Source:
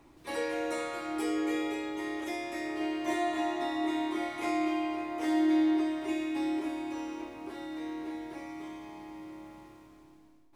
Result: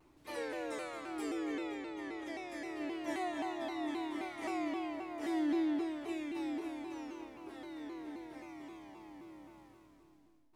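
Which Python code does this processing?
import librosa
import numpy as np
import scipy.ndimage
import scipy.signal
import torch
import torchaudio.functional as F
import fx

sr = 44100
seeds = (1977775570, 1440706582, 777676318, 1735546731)

y = fx.high_shelf(x, sr, hz=8500.0, db=-11.0, at=(1.47, 2.5))
y = fx.vibrato_shape(y, sr, shape='saw_down', rate_hz=3.8, depth_cents=160.0)
y = y * librosa.db_to_amplitude(-7.0)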